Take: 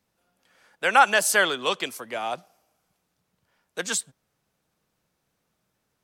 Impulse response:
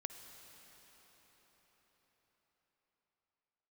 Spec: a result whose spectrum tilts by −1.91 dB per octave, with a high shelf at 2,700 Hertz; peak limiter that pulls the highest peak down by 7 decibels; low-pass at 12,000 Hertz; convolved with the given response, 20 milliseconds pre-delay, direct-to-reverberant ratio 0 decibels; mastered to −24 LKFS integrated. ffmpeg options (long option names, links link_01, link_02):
-filter_complex "[0:a]lowpass=12000,highshelf=frequency=2700:gain=3.5,alimiter=limit=-11dB:level=0:latency=1,asplit=2[link_01][link_02];[1:a]atrim=start_sample=2205,adelay=20[link_03];[link_02][link_03]afir=irnorm=-1:irlink=0,volume=2.5dB[link_04];[link_01][link_04]amix=inputs=2:normalize=0,volume=-2dB"